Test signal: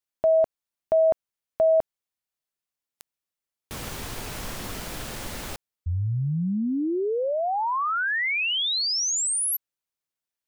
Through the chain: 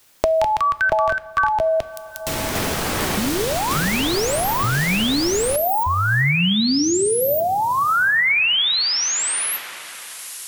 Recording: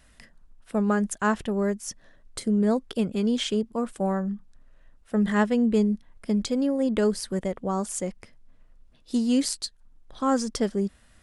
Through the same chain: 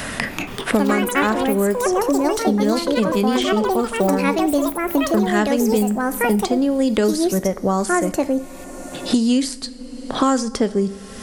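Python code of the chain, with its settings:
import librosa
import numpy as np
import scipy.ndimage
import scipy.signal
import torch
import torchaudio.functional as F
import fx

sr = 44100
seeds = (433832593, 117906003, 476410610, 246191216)

y = fx.echo_pitch(x, sr, ms=236, semitones=5, count=3, db_per_echo=-3.0)
y = fx.rev_double_slope(y, sr, seeds[0], early_s=0.44, late_s=3.5, knee_db=-18, drr_db=12.5)
y = fx.band_squash(y, sr, depth_pct=100)
y = F.gain(torch.from_numpy(y), 5.0).numpy()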